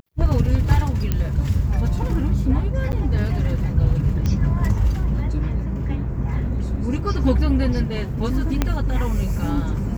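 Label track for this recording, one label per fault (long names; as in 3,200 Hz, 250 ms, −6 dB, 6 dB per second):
1.120000	1.120000	click −8 dBFS
2.920000	2.930000	drop-out 9.6 ms
4.260000	4.260000	click −12 dBFS
8.620000	8.620000	click −5 dBFS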